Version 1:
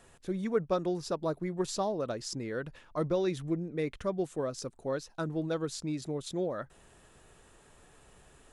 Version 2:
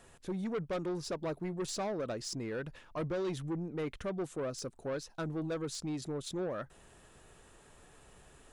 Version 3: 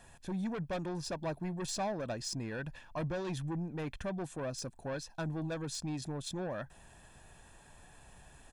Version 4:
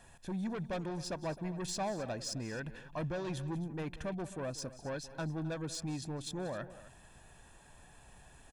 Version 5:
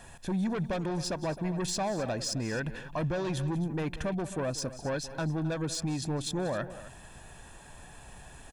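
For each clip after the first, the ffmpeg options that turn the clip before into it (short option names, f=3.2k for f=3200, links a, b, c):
-af "asoftclip=type=tanh:threshold=-31dB"
-af "aecho=1:1:1.2:0.52"
-af "aecho=1:1:186|263:0.15|0.141,volume=-1dB"
-af "alimiter=level_in=8.5dB:limit=-24dB:level=0:latency=1:release=108,volume=-8.5dB,volume=8.5dB"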